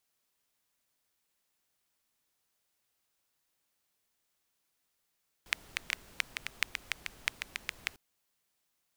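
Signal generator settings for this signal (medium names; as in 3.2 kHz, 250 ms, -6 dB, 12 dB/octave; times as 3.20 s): rain from filtered ticks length 2.50 s, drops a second 6.6, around 2.2 kHz, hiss -15.5 dB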